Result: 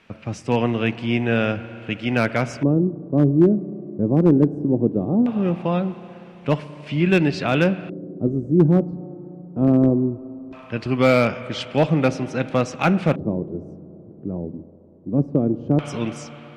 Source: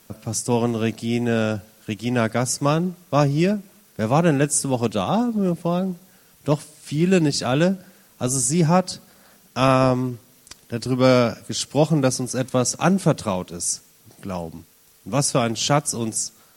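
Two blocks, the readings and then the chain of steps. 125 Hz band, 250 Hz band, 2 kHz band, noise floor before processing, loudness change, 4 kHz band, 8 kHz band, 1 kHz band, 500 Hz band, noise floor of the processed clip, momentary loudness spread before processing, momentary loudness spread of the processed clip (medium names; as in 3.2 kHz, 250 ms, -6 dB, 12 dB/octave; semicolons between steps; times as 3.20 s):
+1.0 dB, +3.0 dB, +2.5 dB, -54 dBFS, +0.5 dB, -5.5 dB, under -20 dB, -4.0 dB, 0.0 dB, -44 dBFS, 13 LU, 16 LU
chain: spring tank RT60 3.6 s, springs 34/57 ms, chirp 35 ms, DRR 14 dB; LFO low-pass square 0.19 Hz 350–2500 Hz; one-sided clip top -8 dBFS, bottom -5.5 dBFS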